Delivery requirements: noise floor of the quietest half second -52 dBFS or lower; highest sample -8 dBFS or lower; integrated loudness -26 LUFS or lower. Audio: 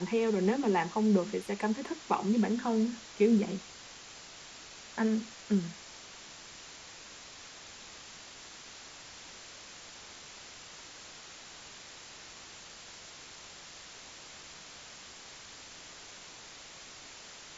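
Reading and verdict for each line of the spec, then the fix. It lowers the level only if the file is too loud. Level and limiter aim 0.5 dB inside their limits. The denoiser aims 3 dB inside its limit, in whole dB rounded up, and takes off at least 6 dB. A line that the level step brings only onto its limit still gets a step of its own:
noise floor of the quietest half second -50 dBFS: fail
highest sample -14.0 dBFS: pass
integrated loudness -30.5 LUFS: pass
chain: noise reduction 6 dB, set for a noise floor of -50 dBFS

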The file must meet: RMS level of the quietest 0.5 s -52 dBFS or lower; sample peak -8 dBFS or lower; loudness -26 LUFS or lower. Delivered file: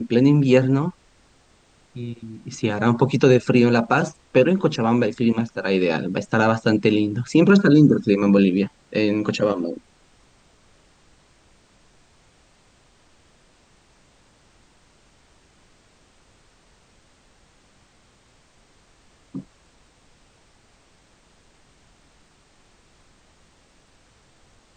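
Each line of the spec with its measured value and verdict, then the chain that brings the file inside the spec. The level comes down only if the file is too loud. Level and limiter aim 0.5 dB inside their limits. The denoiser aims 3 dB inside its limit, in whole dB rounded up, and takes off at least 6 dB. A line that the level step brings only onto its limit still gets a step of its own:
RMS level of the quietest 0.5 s -57 dBFS: pass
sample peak -4.5 dBFS: fail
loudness -19.0 LUFS: fail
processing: trim -7.5 dB

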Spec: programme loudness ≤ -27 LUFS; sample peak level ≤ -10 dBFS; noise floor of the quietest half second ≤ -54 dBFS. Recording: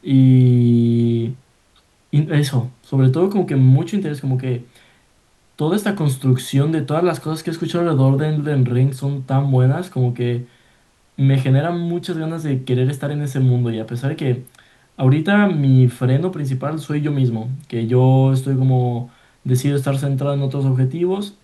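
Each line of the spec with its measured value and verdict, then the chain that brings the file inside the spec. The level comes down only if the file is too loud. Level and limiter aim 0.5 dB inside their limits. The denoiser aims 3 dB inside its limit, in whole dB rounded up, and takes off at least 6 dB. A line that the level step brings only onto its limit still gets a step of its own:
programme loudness -18.0 LUFS: fail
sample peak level -3.0 dBFS: fail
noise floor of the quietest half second -57 dBFS: pass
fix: trim -9.5 dB

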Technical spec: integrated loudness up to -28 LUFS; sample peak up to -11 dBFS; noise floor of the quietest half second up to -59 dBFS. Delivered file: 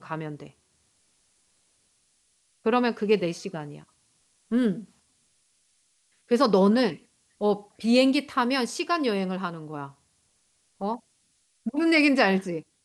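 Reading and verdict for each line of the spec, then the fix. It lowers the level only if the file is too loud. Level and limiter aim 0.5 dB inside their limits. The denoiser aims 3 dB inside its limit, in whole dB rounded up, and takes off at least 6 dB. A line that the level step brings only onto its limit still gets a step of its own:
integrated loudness -25.0 LUFS: fail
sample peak -7.0 dBFS: fail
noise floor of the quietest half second -69 dBFS: pass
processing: trim -3.5 dB; peak limiter -11.5 dBFS

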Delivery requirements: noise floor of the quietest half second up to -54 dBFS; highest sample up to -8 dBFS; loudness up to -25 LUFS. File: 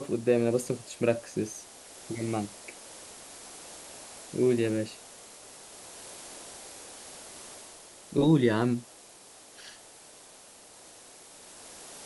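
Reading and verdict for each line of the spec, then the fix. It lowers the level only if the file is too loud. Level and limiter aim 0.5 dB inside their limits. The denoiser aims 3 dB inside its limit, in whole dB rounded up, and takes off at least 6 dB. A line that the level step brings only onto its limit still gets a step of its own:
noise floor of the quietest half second -52 dBFS: fail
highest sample -11.5 dBFS: pass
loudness -29.0 LUFS: pass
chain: noise reduction 6 dB, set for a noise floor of -52 dBFS

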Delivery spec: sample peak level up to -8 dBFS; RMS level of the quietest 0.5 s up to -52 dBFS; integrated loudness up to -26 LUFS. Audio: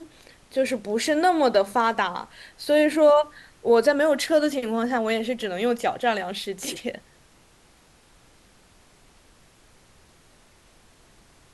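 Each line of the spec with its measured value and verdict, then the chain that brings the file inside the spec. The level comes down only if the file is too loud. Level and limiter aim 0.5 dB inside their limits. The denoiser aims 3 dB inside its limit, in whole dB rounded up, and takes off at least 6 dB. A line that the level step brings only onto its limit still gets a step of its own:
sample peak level -7.0 dBFS: fail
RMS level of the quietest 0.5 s -56 dBFS: pass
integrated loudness -23.0 LUFS: fail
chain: trim -3.5 dB

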